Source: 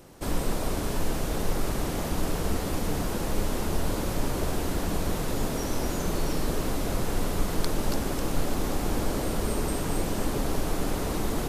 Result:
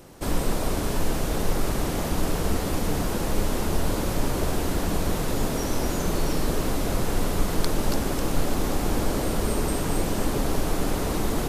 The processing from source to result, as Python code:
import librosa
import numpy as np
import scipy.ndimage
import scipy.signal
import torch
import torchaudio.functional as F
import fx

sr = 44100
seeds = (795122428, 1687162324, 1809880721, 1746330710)

y = fx.dmg_crackle(x, sr, seeds[0], per_s=46.0, level_db=-51.0, at=(8.88, 11.1), fade=0.02)
y = y * librosa.db_to_amplitude(3.0)